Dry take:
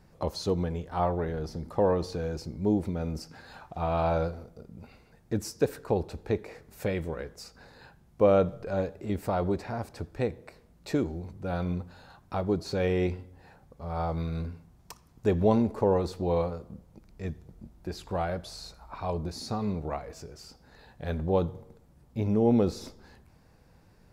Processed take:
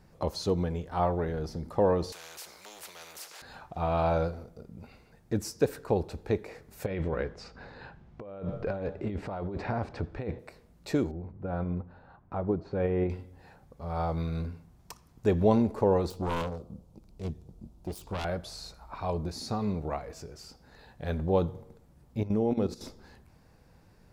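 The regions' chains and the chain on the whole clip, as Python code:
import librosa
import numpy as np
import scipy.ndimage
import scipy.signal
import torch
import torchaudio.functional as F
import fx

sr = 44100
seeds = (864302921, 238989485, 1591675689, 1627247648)

y = fx.chain(x, sr, fx.cheby2_highpass(hz=280.0, order=4, stop_db=40),
    fx.spectral_comp(ratio=4.0), at=(2.12, 3.42))
y = fx.chain(y, sr, fx.lowpass(hz=3200.0, slope=12),
    fx.over_compress(threshold_db=-34.0, ratio=-1.0), at=(6.86, 10.39))
y = fx.chain(y, sr, fx.lowpass(hz=1500.0, slope=12),
    fx.tremolo_shape(shape='saw_up', hz=5.7, depth_pct=30), at=(11.11, 13.1))
y = fx.chain(y, sr, fx.self_delay(depth_ms=0.81),
    fx.peak_eq(hz=1800.0, db=-12.0, octaves=0.89), at=(16.1, 18.25))
y = fx.chain(y, sr, fx.hum_notches(base_hz=60, count=7),
    fx.level_steps(step_db=13), at=(22.23, 22.81))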